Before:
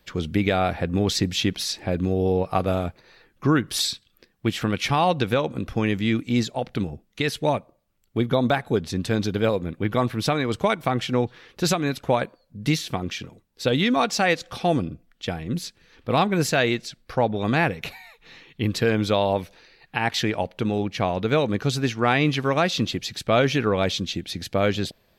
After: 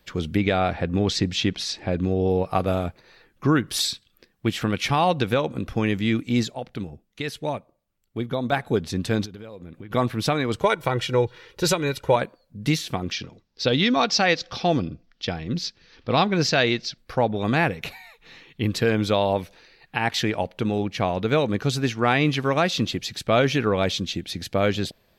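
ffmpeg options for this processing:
ffmpeg -i in.wav -filter_complex "[0:a]asettb=1/sr,asplit=3[link_01][link_02][link_03];[link_01]atrim=end=0.374[link_04];[link_02]atrim=start=0.37:end=2.3,asetpts=PTS-STARTPTS,afade=type=in:duration=0.004:curve=qsin,afade=type=out:start_time=1.926:duration=0.004:curve=qsin,lowpass=6500[link_05];[link_03]atrim=start=2.296[link_06];[link_04][link_05]acrossfade=duration=0.004:curve1=hsin:curve2=qsin[link_07];[link_07][link_06]acrossfade=duration=0.004:curve1=qsin:curve2=hsin,asplit=3[link_08][link_09][link_10];[link_08]afade=type=out:start_time=9.24:duration=0.02[link_11];[link_09]acompressor=threshold=-35dB:ratio=12:attack=3.2:release=140:knee=1:detection=peak,afade=type=in:start_time=9.24:duration=0.02,afade=type=out:start_time=9.9:duration=0.02[link_12];[link_10]afade=type=in:start_time=9.9:duration=0.02[link_13];[link_11][link_12][link_13]amix=inputs=3:normalize=0,asettb=1/sr,asplit=3[link_14][link_15][link_16];[link_14]atrim=end=10.624[link_17];[link_15]atrim=start=10.62:end=12.16,asetpts=PTS-STARTPTS,afade=type=in:duration=0.004:curve=qsin,afade=type=out:start_time=1.536:duration=0.004:curve=qsin,aecho=1:1:2.1:0.62,atrim=end_sample=67914[link_18];[link_16]atrim=start=12.156[link_19];[link_17][link_18]acrossfade=duration=0.004:curve1=hsin:curve2=qsin[link_20];[link_20][link_19]acrossfade=duration=0.004:curve1=qsin:curve2=hsin,asettb=1/sr,asplit=3[link_21][link_22][link_23];[link_21]atrim=end=13.124[link_24];[link_22]atrim=start=13.12:end=16.98,asetpts=PTS-STARTPTS,afade=type=in:duration=0.004:curve=qsin,afade=type=out:start_time=3.856:duration=0.004:curve=qsin,highshelf=frequency=7100:width_type=q:width=3:gain=-12[link_25];[link_23]atrim=start=16.976[link_26];[link_24][link_25]acrossfade=duration=0.004:curve1=hsin:curve2=qsin[link_27];[link_27][link_26]acrossfade=duration=0.004:curve1=qsin:curve2=hsin,asplit=3[link_28][link_29][link_30];[link_28]atrim=end=6.542[link_31];[link_29]atrim=start=6.538:end=8.522,asetpts=PTS-STARTPTS,volume=-5.5dB[link_32];[link_30]atrim=start=8.518[link_33];[link_31][link_32]acrossfade=duration=0.004:curve1=hsin:curve2=hsin[link_34];[link_34][link_33]acrossfade=duration=0.004:curve1=hsin:curve2=hsin" out.wav

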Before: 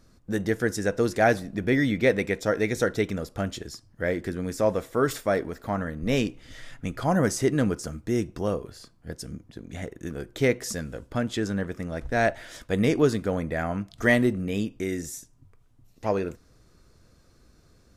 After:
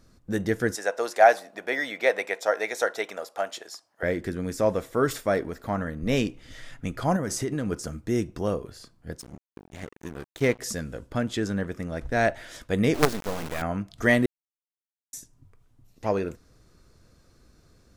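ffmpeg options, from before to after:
ffmpeg -i in.wav -filter_complex "[0:a]asettb=1/sr,asplit=3[link_01][link_02][link_03];[link_01]atrim=end=0.754[link_04];[link_02]atrim=start=0.75:end=4.03,asetpts=PTS-STARTPTS,afade=type=in:duration=0.004:curve=qsin,afade=type=out:start_time=3.276:duration=0.004:curve=qsin,highpass=frequency=710:width_type=q:width=2.2[link_05];[link_03]atrim=start=4.026[link_06];[link_04][link_05]acrossfade=duration=0.004:curve1=hsin:curve2=qsin[link_07];[link_07][link_06]acrossfade=duration=0.004:curve1=qsin:curve2=hsin,asettb=1/sr,asplit=3[link_08][link_09][link_10];[link_08]atrim=end=7.164[link_11];[link_09]atrim=start=7.16:end=7.72,asetpts=PTS-STARTPTS,afade=type=in:duration=0.004:curve=qsin,afade=type=out:start_time=0.556:duration=0.004:curve=qsin,acompressor=threshold=-23dB:ratio=10:attack=3.2:release=140:knee=1:detection=peak[link_12];[link_10]atrim=start=7.716[link_13];[link_11][link_12]acrossfade=duration=0.004:curve1=hsin:curve2=qsin[link_14];[link_14][link_13]acrossfade=duration=0.004:curve1=qsin:curve2=hsin,asettb=1/sr,asplit=3[link_15][link_16][link_17];[link_15]atrim=end=9.204[link_18];[link_16]atrim=start=9.2:end=10.59,asetpts=PTS-STARTPTS,afade=type=in:duration=0.004:curve=qsin,afade=type=out:start_time=1.386:duration=0.004:curve=qsin,aeval=exprs='sgn(val(0))*max(abs(val(0))-0.0126,0)':channel_layout=same[link_19];[link_17]atrim=start=10.586[link_20];[link_18][link_19]acrossfade=duration=0.004:curve1=hsin:curve2=qsin[link_21];[link_21][link_20]acrossfade=duration=0.004:curve1=qsin:curve2=hsin,asettb=1/sr,asplit=3[link_22][link_23][link_24];[link_22]atrim=end=12.944[link_25];[link_23]atrim=start=12.94:end=13.62,asetpts=PTS-STARTPTS,afade=type=in:duration=0.004:curve=qsin,afade=type=out:start_time=0.676:duration=0.004:curve=qsin,acrusher=bits=3:dc=4:mix=0:aa=0.000001[link_26];[link_24]atrim=start=13.616[link_27];[link_25][link_26]acrossfade=duration=0.004:curve1=hsin:curve2=qsin[link_28];[link_28][link_27]acrossfade=duration=0.004:curve1=qsin:curve2=hsin,asplit=3[link_29][link_30][link_31];[link_29]atrim=end=14.26,asetpts=PTS-STARTPTS,afade=type=out:start_time=14.256:duration=0.004:curve=hsin[link_32];[link_30]atrim=start=14.26:end=15.13,asetpts=PTS-STARTPTS,volume=0[link_33];[link_31]atrim=start=15.13,asetpts=PTS-STARTPTS,afade=type=in:duration=0.004:curve=hsin[link_34];[link_32][link_33][link_34]concat=n=3:v=0:a=1" out.wav

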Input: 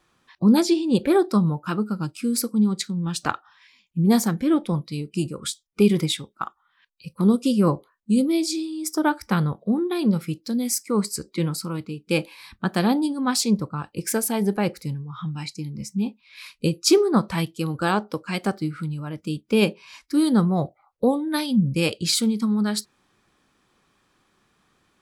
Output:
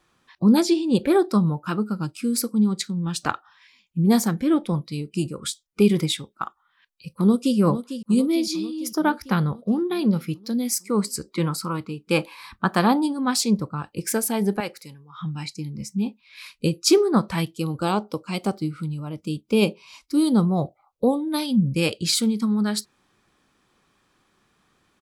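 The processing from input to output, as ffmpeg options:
ffmpeg -i in.wav -filter_complex "[0:a]asplit=2[link_01][link_02];[link_02]afade=type=in:start_time=7.14:duration=0.01,afade=type=out:start_time=7.57:duration=0.01,aecho=0:1:450|900|1350|1800|2250|2700|3150|3600:0.298538|0.19405|0.126132|0.0819861|0.0532909|0.0346391|0.0225154|0.014635[link_03];[link_01][link_03]amix=inputs=2:normalize=0,asettb=1/sr,asplit=3[link_04][link_05][link_06];[link_04]atrim=end=8.354[link_07];[link_05]atrim=start=8.35:end=10.72,asetpts=PTS-STARTPTS,afade=type=in:duration=0.004:curve=qsin,afade=type=out:start_time=2.366:duration=0.004:curve=qsin,equalizer=frequency=8000:width=5.7:gain=-13[link_08];[link_06]atrim=start=10.716[link_09];[link_07][link_08]acrossfade=duration=0.004:curve1=hsin:curve2=qsin[link_10];[link_10][link_09]acrossfade=duration=0.004:curve1=qsin:curve2=hsin,asettb=1/sr,asplit=3[link_11][link_12][link_13];[link_11]atrim=end=11.304[link_14];[link_12]atrim=start=11.3:end=13.17,asetpts=PTS-STARTPTS,afade=type=in:duration=0.004:curve=qsin,afade=type=out:start_time=1.866:duration=0.004:curve=qsin,equalizer=frequency=1100:width_type=o:width=1:gain=9.5[link_15];[link_13]atrim=start=13.166[link_16];[link_14][link_15]acrossfade=duration=0.004:curve1=hsin:curve2=qsin[link_17];[link_17][link_16]acrossfade=duration=0.004:curve1=qsin:curve2=hsin,asettb=1/sr,asplit=3[link_18][link_19][link_20];[link_18]atrim=end=14.604[link_21];[link_19]atrim=start=14.6:end=15.21,asetpts=PTS-STARTPTS,afade=type=in:duration=0.004:curve=qsin,afade=type=out:start_time=0.606:duration=0.004:curve=qsin,highpass=frequency=890:poles=1[link_22];[link_20]atrim=start=15.206[link_23];[link_21][link_22]acrossfade=duration=0.004:curve1=hsin:curve2=qsin[link_24];[link_24][link_23]acrossfade=duration=0.004:curve1=qsin:curve2=hsin,asettb=1/sr,asplit=3[link_25][link_26][link_27];[link_25]atrim=end=17.574[link_28];[link_26]atrim=start=17.57:end=21.42,asetpts=PTS-STARTPTS,afade=type=in:duration=0.004:curve=qsin,afade=type=out:start_time=3.846:duration=0.004:curve=qsin,equalizer=frequency=1700:width_type=o:width=0.39:gain=-14[link_29];[link_27]atrim=start=21.416[link_30];[link_28][link_29]acrossfade=duration=0.004:curve1=hsin:curve2=qsin[link_31];[link_31][link_30]acrossfade=duration=0.004:curve1=qsin:curve2=hsin" out.wav

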